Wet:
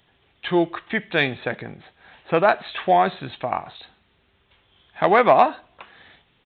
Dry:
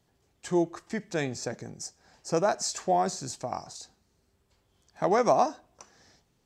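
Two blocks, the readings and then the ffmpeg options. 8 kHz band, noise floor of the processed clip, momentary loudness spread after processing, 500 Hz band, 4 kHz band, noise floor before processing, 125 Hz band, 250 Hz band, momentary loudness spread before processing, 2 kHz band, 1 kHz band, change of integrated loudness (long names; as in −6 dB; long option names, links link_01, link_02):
below −35 dB, −64 dBFS, 14 LU, +7.0 dB, +7.5 dB, −71 dBFS, +5.0 dB, +5.5 dB, 17 LU, +14.5 dB, +9.0 dB, +8.0 dB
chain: -af "aresample=8000,aresample=44100,acontrast=86,tiltshelf=frequency=1300:gain=-8,volume=5.5dB"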